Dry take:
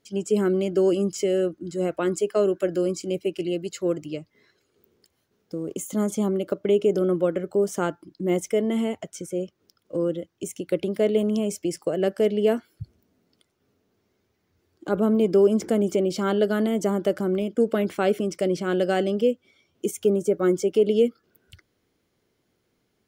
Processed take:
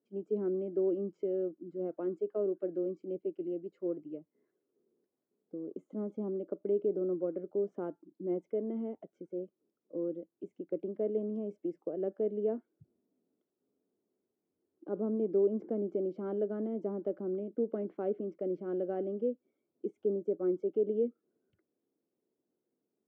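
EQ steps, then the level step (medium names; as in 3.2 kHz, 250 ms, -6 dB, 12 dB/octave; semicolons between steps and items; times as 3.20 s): ladder band-pass 370 Hz, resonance 25%; 0.0 dB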